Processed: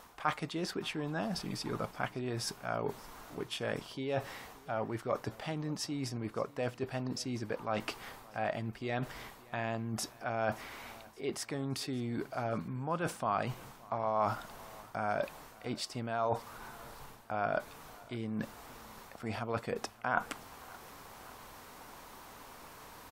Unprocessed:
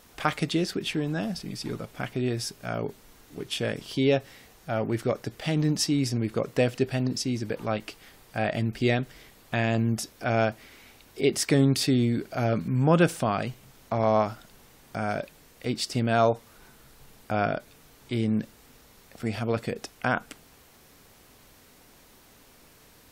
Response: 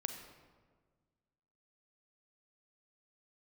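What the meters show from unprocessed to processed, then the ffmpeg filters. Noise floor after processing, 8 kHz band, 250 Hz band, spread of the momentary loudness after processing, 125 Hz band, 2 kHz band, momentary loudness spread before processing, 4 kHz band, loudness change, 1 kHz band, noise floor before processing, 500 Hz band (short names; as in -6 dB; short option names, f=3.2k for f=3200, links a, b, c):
-55 dBFS, -9.0 dB, -12.0 dB, 16 LU, -12.5 dB, -7.0 dB, 13 LU, -9.0 dB, -10.0 dB, -5.0 dB, -56 dBFS, -9.0 dB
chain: -af "areverse,acompressor=threshold=-35dB:ratio=12,areverse,equalizer=f=1k:w=1.1:g=12,aecho=1:1:572|1144|1716:0.0708|0.0368|0.0191"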